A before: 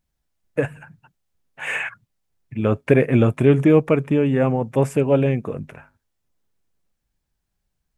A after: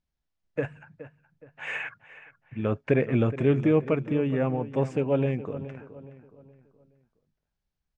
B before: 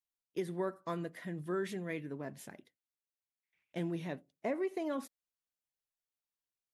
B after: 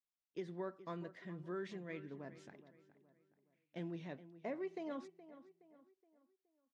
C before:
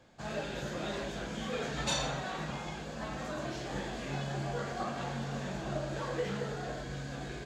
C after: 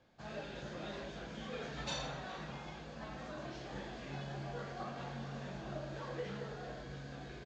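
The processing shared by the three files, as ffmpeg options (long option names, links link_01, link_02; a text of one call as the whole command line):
ffmpeg -i in.wav -filter_complex "[0:a]lowpass=frequency=6100:width=0.5412,lowpass=frequency=6100:width=1.3066,asplit=2[link_01][link_02];[link_02]adelay=420,lowpass=frequency=2700:poles=1,volume=-14.5dB,asplit=2[link_03][link_04];[link_04]adelay=420,lowpass=frequency=2700:poles=1,volume=0.41,asplit=2[link_05][link_06];[link_06]adelay=420,lowpass=frequency=2700:poles=1,volume=0.41,asplit=2[link_07][link_08];[link_08]adelay=420,lowpass=frequency=2700:poles=1,volume=0.41[link_09];[link_01][link_03][link_05][link_07][link_09]amix=inputs=5:normalize=0,volume=-7.5dB" out.wav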